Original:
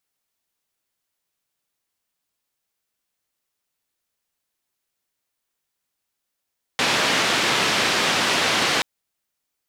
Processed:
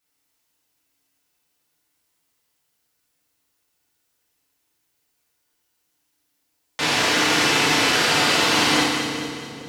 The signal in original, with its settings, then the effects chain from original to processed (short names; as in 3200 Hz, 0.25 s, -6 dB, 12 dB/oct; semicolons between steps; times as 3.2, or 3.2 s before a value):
noise band 150–3600 Hz, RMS -20.5 dBFS 2.03 s
limiter -17.5 dBFS; split-band echo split 520 Hz, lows 0.469 s, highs 0.212 s, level -7.5 dB; FDN reverb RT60 1 s, low-frequency decay 1.35×, high-frequency decay 1×, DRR -6 dB